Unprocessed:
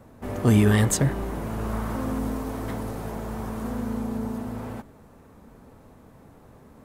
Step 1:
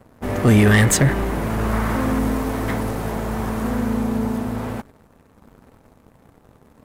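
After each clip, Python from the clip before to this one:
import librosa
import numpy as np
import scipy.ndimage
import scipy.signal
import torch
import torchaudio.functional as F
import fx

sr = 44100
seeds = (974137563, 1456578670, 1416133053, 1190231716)

y = fx.dynamic_eq(x, sr, hz=2000.0, q=1.5, threshold_db=-48.0, ratio=4.0, max_db=7)
y = fx.leveller(y, sr, passes=2)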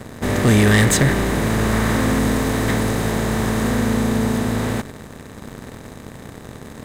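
y = fx.bin_compress(x, sr, power=0.6)
y = fx.peak_eq(y, sr, hz=3800.0, db=6.5, octaves=0.27)
y = y * 10.0 ** (-2.0 / 20.0)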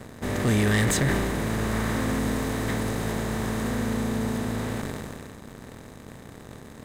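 y = fx.sustainer(x, sr, db_per_s=23.0)
y = y * 10.0 ** (-8.5 / 20.0)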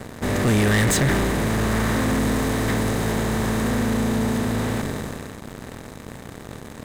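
y = fx.leveller(x, sr, passes=2)
y = y * 10.0 ** (-1.0 / 20.0)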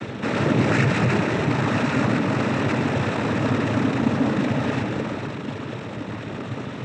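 y = scipy.signal.sosfilt(scipy.signal.butter(16, 3000.0, 'lowpass', fs=sr, output='sos'), x)
y = fx.power_curve(y, sr, exponent=0.5)
y = fx.noise_vocoder(y, sr, seeds[0], bands=12)
y = y * 10.0 ** (-3.0 / 20.0)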